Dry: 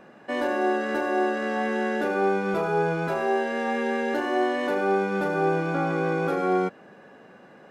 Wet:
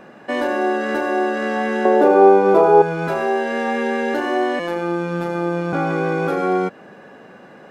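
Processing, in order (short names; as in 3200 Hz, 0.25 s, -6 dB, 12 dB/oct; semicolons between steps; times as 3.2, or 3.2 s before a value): 1.85–2.82 band shelf 550 Hz +12 dB 2.3 oct; in parallel at +2 dB: compressor, threshold -26 dBFS, peak gain reduction 16.5 dB; 4.59–5.73 on the sum: robotiser 172 Hz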